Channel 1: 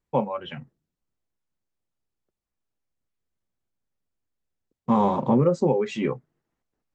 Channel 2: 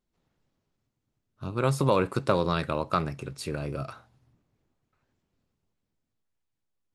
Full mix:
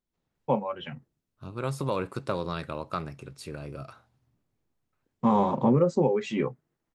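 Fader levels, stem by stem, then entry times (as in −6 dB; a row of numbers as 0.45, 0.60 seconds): −2.0, −6.0 decibels; 0.35, 0.00 seconds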